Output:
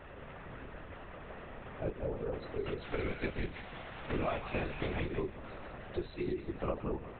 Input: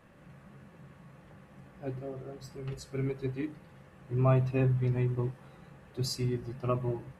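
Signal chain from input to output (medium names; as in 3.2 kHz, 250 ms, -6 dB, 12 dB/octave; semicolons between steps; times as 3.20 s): 2.82–5.00 s: formants flattened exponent 0.6; elliptic high-pass 220 Hz; compression 6:1, threshold -45 dBFS, peak gain reduction 19.5 dB; thinning echo 178 ms, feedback 39%, high-pass 1.2 kHz, level -5 dB; LPC vocoder at 8 kHz whisper; trim +11.5 dB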